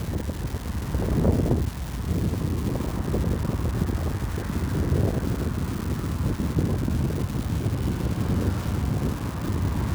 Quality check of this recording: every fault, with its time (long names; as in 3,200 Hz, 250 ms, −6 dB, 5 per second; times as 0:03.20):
surface crackle 540 per second −29 dBFS